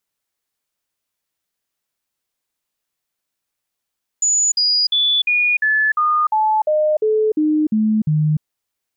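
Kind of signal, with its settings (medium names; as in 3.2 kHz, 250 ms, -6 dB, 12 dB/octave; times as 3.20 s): stepped sine 6.92 kHz down, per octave 2, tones 12, 0.30 s, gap 0.05 s -13 dBFS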